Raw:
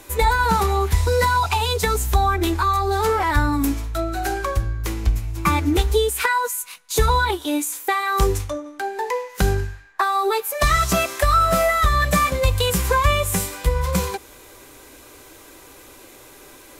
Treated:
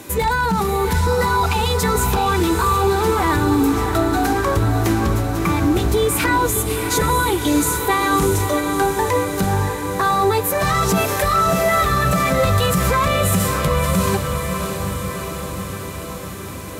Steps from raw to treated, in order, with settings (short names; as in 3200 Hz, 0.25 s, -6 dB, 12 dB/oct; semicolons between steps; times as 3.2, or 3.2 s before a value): one-sided fold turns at -10.5 dBFS; HPF 80 Hz 12 dB/oct; bell 180 Hz +12.5 dB 1.4 oct; limiter -16 dBFS, peak gain reduction 16 dB; diffused feedback echo 0.641 s, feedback 68%, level -6 dB; gain +5 dB